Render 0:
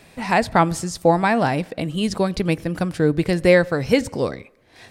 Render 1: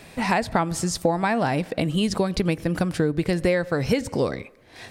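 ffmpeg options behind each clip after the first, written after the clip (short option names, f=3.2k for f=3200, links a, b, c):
-af "acompressor=threshold=-22dB:ratio=6,volume=3.5dB"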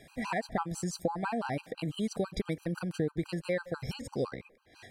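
-af "afftfilt=real='re*gt(sin(2*PI*6*pts/sr)*(1-2*mod(floor(b*sr/1024/800),2)),0)':imag='im*gt(sin(2*PI*6*pts/sr)*(1-2*mod(floor(b*sr/1024/800),2)),0)':win_size=1024:overlap=0.75,volume=-8.5dB"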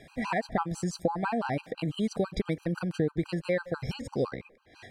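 -af "highshelf=f=8k:g=-11.5,volume=3.5dB"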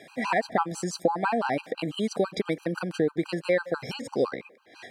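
-af "highpass=260,volume=5dB"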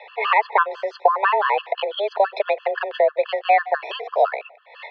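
-af "highpass=f=270:t=q:w=0.5412,highpass=f=270:t=q:w=1.307,lowpass=f=3.4k:t=q:w=0.5176,lowpass=f=3.4k:t=q:w=0.7071,lowpass=f=3.4k:t=q:w=1.932,afreqshift=200,volume=8dB"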